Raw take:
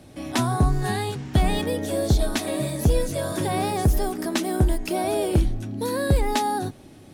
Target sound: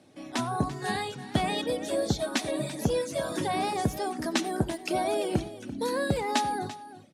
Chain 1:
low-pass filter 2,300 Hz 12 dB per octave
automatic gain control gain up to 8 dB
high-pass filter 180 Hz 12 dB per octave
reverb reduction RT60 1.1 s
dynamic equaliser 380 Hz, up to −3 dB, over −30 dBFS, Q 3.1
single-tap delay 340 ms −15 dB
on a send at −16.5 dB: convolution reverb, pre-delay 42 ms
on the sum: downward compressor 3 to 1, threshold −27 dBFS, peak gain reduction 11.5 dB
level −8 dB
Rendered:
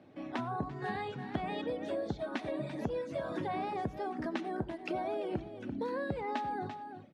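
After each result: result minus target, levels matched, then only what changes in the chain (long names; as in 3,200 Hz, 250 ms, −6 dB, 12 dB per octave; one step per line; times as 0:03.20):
8,000 Hz band −19.0 dB; downward compressor: peak gain reduction +11.5 dB
change: low-pass filter 9,100 Hz 12 dB per octave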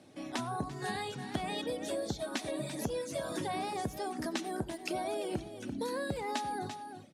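downward compressor: peak gain reduction +11.5 dB
remove: downward compressor 3 to 1, threshold −27 dBFS, peak gain reduction 11.5 dB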